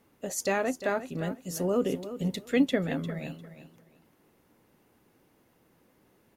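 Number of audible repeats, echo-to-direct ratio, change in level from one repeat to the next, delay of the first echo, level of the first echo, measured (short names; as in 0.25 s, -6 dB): 2, -12.5 dB, -13.5 dB, 0.35 s, -12.5 dB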